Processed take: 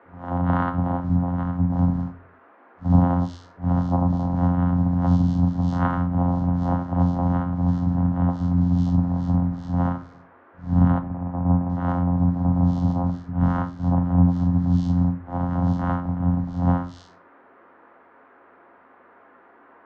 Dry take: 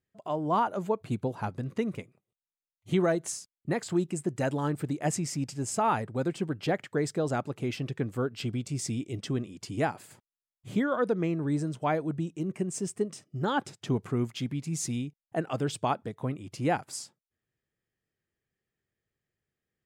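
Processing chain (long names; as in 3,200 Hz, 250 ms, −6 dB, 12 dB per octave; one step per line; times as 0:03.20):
random phases in long frames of 200 ms
parametric band 3,200 Hz −4 dB 0.77 octaves
in parallel at −1 dB: downward compressor, threshold −35 dBFS, peak gain reduction 13.5 dB
0:10.98–0:11.69: on the sum: formant resonators in series u
channel vocoder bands 4, saw 88.2 Hz
phaser with its sweep stopped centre 1,000 Hz, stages 4
noise in a band 250–1,600 Hz −60 dBFS
high-frequency loss of the air 150 metres
on a send at −7.5 dB: convolution reverb RT60 0.30 s, pre-delay 4 ms
on the sum: level +7 dB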